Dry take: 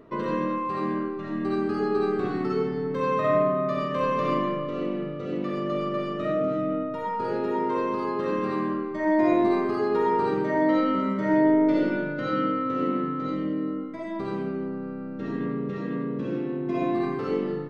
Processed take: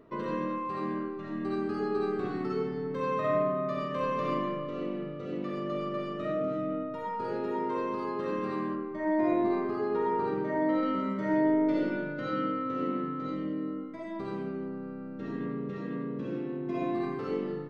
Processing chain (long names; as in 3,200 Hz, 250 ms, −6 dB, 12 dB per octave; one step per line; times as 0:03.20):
0:08.75–0:10.83: high-shelf EQ 4,200 Hz −11.5 dB
level −5.5 dB